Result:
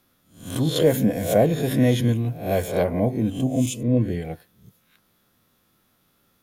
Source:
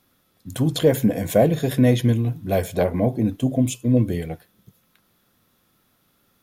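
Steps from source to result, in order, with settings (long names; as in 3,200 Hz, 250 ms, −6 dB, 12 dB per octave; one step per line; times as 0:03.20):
peak hold with a rise ahead of every peak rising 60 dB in 0.44 s
0:03.83–0:04.25: low-pass filter 3,300 Hz 6 dB per octave
level −2.5 dB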